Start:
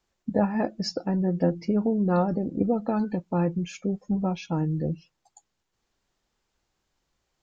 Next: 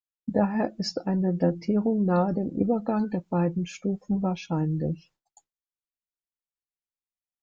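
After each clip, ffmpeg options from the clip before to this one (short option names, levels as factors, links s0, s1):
-af "agate=range=0.0224:threshold=0.00282:ratio=3:detection=peak"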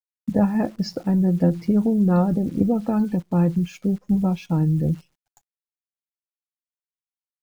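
-af "bass=f=250:g=9,treble=f=4000:g=-3,acrusher=bits=9:dc=4:mix=0:aa=0.000001"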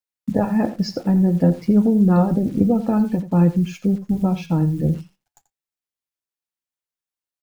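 -af "flanger=delay=4.9:depth=5.4:regen=-76:speed=0.54:shape=triangular,aecho=1:1:86:0.2,volume=2.24"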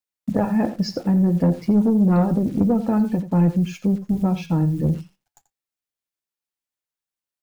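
-af "asoftclip=type=tanh:threshold=0.335"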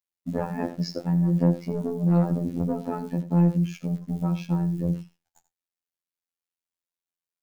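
-af "afftfilt=real='hypot(re,im)*cos(PI*b)':imag='0':win_size=2048:overlap=0.75,volume=0.794"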